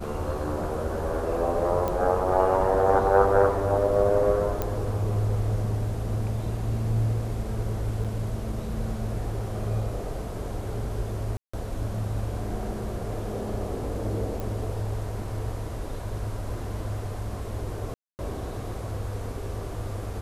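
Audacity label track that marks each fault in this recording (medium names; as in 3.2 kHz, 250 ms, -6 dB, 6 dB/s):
1.880000	1.880000	pop -15 dBFS
4.620000	4.620000	pop -13 dBFS
8.040000	8.050000	dropout 6.9 ms
11.370000	11.540000	dropout 165 ms
14.400000	14.400000	pop
17.940000	18.190000	dropout 249 ms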